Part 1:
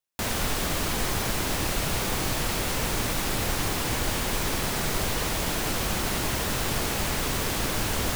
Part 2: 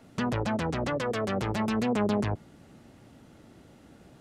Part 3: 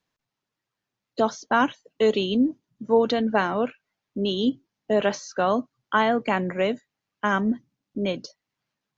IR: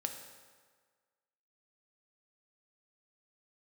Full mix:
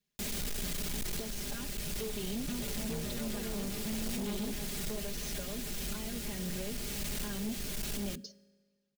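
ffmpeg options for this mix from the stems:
-filter_complex "[0:a]volume=-7.5dB,asplit=2[link_01][link_02];[link_02]volume=-24dB[link_03];[1:a]acompressor=threshold=-34dB:ratio=6,adelay=2300,volume=-2dB[link_04];[2:a]acompressor=threshold=-30dB:ratio=6,asoftclip=type=tanh:threshold=-26.5dB,volume=-7dB,asplit=3[link_05][link_06][link_07];[link_06]volume=-12dB[link_08];[link_07]apad=whole_len=359424[link_09];[link_01][link_09]sidechaincompress=threshold=-44dB:ratio=8:attack=16:release=894[link_10];[3:a]atrim=start_sample=2205[link_11];[link_03][link_08]amix=inputs=2:normalize=0[link_12];[link_12][link_11]afir=irnorm=-1:irlink=0[link_13];[link_10][link_04][link_05][link_13]amix=inputs=4:normalize=0,equalizer=frequency=1000:width=0.79:gain=-14.5,aecho=1:1:4.9:0.98,asoftclip=type=hard:threshold=-32.5dB"

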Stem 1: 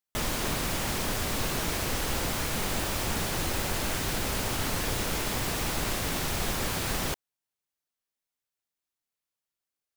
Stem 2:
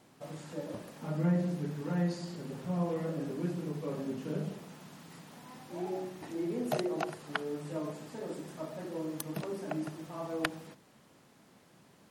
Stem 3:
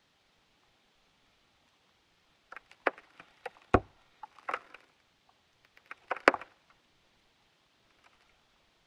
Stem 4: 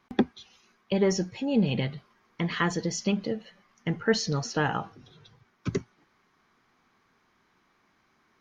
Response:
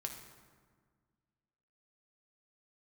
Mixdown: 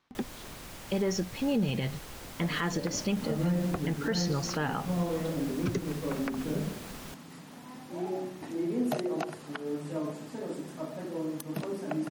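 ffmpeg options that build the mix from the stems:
-filter_complex "[0:a]volume=-15dB[link_01];[1:a]equalizer=frequency=260:width_type=o:width=0.31:gain=7,adelay=2200,volume=2dB[link_02];[2:a]volume=-8.5dB[link_03];[3:a]dynaudnorm=framelen=140:gausssize=13:maxgain=11.5dB,volume=-9dB[link_04];[link_01][link_02][link_03][link_04]amix=inputs=4:normalize=0,alimiter=limit=-20dB:level=0:latency=1:release=124"

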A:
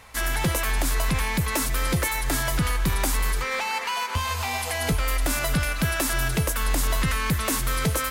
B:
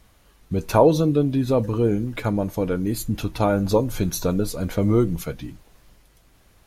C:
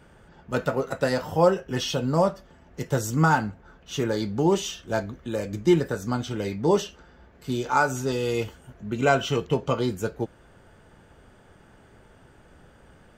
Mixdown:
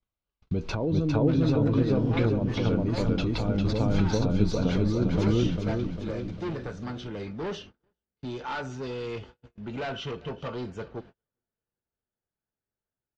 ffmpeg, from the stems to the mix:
ffmpeg -i stem1.wav -i stem2.wav -i stem3.wav -filter_complex "[1:a]bandreject=frequency=1800:width=7.2,acrossover=split=350[link_01][link_02];[link_02]acompressor=threshold=-30dB:ratio=4[link_03];[link_01][link_03]amix=inputs=2:normalize=0,volume=2.5dB,asplit=2[link_04][link_05];[link_05]volume=-7dB[link_06];[2:a]asoftclip=type=tanh:threshold=-25dB,adelay=750,volume=-4.5dB,asplit=2[link_07][link_08];[link_08]volume=-21dB[link_09];[link_04][link_07]amix=inputs=2:normalize=0,alimiter=limit=-19dB:level=0:latency=1:release=98,volume=0dB[link_10];[link_06][link_09]amix=inputs=2:normalize=0,aecho=0:1:401|802|1203|1604|2005|2406|2807:1|0.51|0.26|0.133|0.0677|0.0345|0.0176[link_11];[link_10][link_11]amix=inputs=2:normalize=0,lowpass=frequency=4900:width=0.5412,lowpass=frequency=4900:width=1.3066,agate=range=-37dB:threshold=-46dB:ratio=16:detection=peak" out.wav

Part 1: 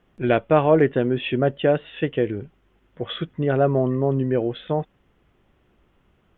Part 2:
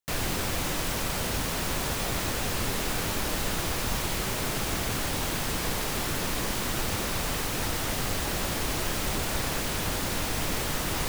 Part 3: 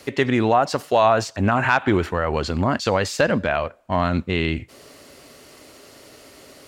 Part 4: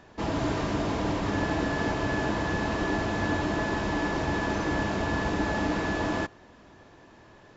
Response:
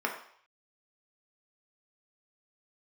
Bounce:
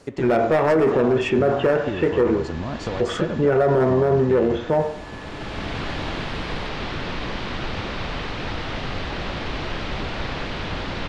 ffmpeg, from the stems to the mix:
-filter_complex "[0:a]highshelf=frequency=2000:gain=-9.5,volume=15dB,asoftclip=hard,volume=-15dB,volume=2.5dB,asplit=3[link_01][link_02][link_03];[link_02]volume=-4dB[link_04];[1:a]lowpass=frequency=4000:width=0.5412,lowpass=frequency=4000:width=1.3066,adelay=850,volume=2.5dB[link_05];[2:a]lowpass=frequency=8200:width=0.5412,lowpass=frequency=8200:width=1.3066,equalizer=frequency=2900:width_type=o:width=2.7:gain=-12,acompressor=threshold=-25dB:ratio=6,volume=0dB[link_06];[3:a]volume=-10dB[link_07];[link_03]apad=whole_len=526505[link_08];[link_05][link_08]sidechaincompress=threshold=-35dB:ratio=8:attack=16:release=734[link_09];[4:a]atrim=start_sample=2205[link_10];[link_04][link_10]afir=irnorm=-1:irlink=0[link_11];[link_01][link_09][link_06][link_07][link_11]amix=inputs=5:normalize=0,alimiter=limit=-10.5dB:level=0:latency=1:release=20"

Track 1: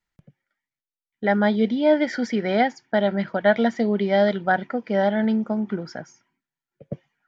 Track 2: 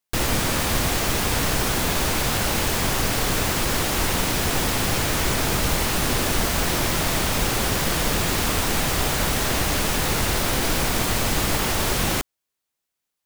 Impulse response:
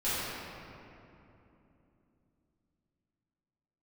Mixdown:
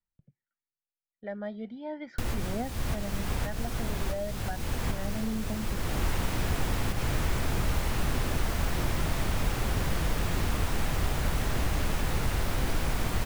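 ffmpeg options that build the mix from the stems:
-filter_complex "[0:a]highshelf=frequency=3300:gain=-10,aphaser=in_gain=1:out_gain=1:delay=1.8:decay=0.5:speed=0.37:type=triangular,volume=-17.5dB,asplit=2[link_01][link_02];[1:a]lowshelf=frequency=200:gain=5.5,adelay=2050,volume=-2.5dB[link_03];[link_02]apad=whole_len=675108[link_04];[link_03][link_04]sidechaincompress=threshold=-48dB:ratio=10:attack=38:release=390[link_05];[link_01][link_05]amix=inputs=2:normalize=0,lowshelf=frequency=130:gain=7,acrossover=split=500|2800[link_06][link_07][link_08];[link_06]acompressor=threshold=-26dB:ratio=4[link_09];[link_07]acompressor=threshold=-37dB:ratio=4[link_10];[link_08]acompressor=threshold=-43dB:ratio=4[link_11];[link_09][link_10][link_11]amix=inputs=3:normalize=0"

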